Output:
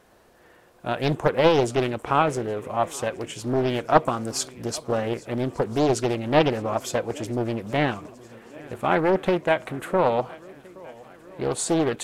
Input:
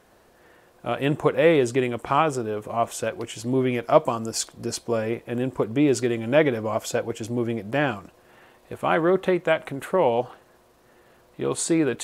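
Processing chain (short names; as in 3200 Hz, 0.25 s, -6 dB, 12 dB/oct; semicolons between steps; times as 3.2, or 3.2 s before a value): swung echo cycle 1.368 s, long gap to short 1.5:1, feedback 55%, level -23 dB; Doppler distortion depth 0.78 ms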